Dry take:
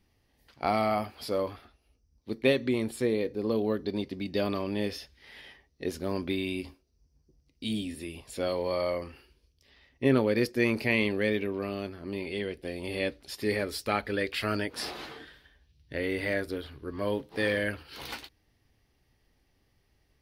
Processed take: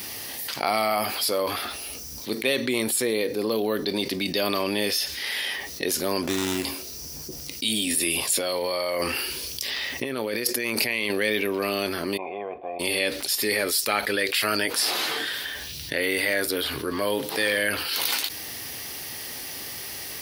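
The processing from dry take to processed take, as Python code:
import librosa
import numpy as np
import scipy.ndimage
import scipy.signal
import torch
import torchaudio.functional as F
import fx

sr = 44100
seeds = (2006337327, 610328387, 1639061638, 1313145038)

y = fx.running_max(x, sr, window=17, at=(6.23, 6.65))
y = fx.over_compress(y, sr, threshold_db=-37.0, ratio=-1.0, at=(7.87, 11.1))
y = fx.formant_cascade(y, sr, vowel='a', at=(12.16, 12.79), fade=0.02)
y = scipy.signal.sosfilt(scipy.signal.butter(2, 66.0, 'highpass', fs=sr, output='sos'), y)
y = fx.riaa(y, sr, side='recording')
y = fx.env_flatten(y, sr, amount_pct=70)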